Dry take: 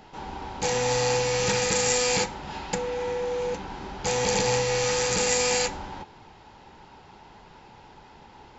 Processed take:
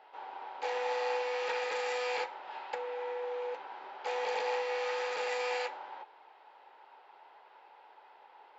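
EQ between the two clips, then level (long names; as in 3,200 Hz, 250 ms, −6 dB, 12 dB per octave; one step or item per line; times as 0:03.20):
high-pass filter 510 Hz 24 dB per octave
high-frequency loss of the air 410 metres
high-shelf EQ 6,400 Hz +8.5 dB
−4.0 dB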